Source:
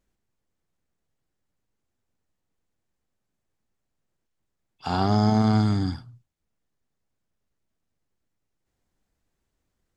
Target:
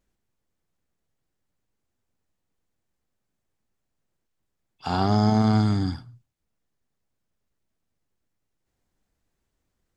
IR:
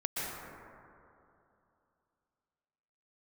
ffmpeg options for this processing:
-filter_complex "[0:a]asplit=2[a][b];[1:a]atrim=start_sample=2205,atrim=end_sample=6174[c];[b][c]afir=irnorm=-1:irlink=0,volume=-28dB[d];[a][d]amix=inputs=2:normalize=0"

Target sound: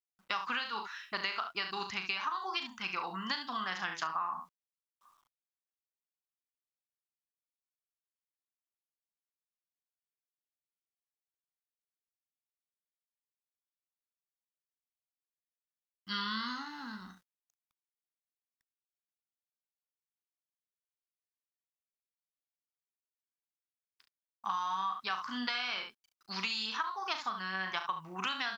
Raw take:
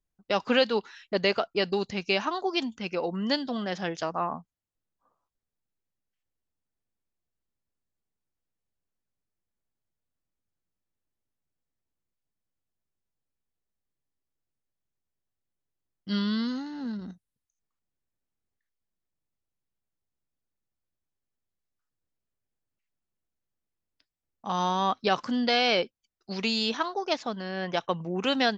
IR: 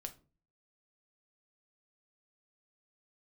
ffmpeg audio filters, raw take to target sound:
-filter_complex "[0:a]lowshelf=f=760:t=q:w=3:g=-12.5,asplit=2[a][b];[b]aecho=0:1:37|69:0.422|0.316[c];[a][c]amix=inputs=2:normalize=0,acompressor=threshold=-31dB:ratio=16,acrusher=bits=11:mix=0:aa=0.000001,adynamicequalizer=threshold=0.00447:dfrequency=4500:dqfactor=0.7:tfrequency=4500:tqfactor=0.7:attack=5:release=100:ratio=0.375:range=2:mode=cutabove:tftype=highshelf"

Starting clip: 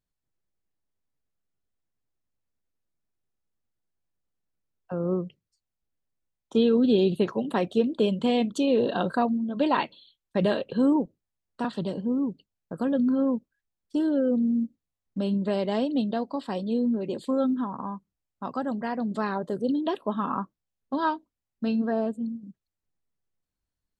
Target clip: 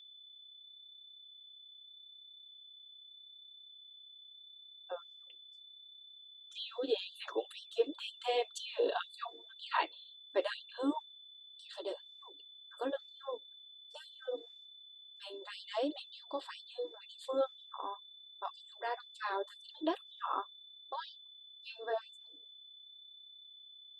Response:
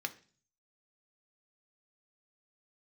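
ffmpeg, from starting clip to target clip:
-af "aeval=exprs='val(0)+0.00398*sin(2*PI*3500*n/s)':c=same,flanger=delay=2.3:depth=5.7:regen=-48:speed=0.81:shape=triangular,afftfilt=real='re*gte(b*sr/1024,270*pow(3000/270,0.5+0.5*sin(2*PI*2*pts/sr)))':imag='im*gte(b*sr/1024,270*pow(3000/270,0.5+0.5*sin(2*PI*2*pts/sr)))':win_size=1024:overlap=0.75,volume=-1dB"

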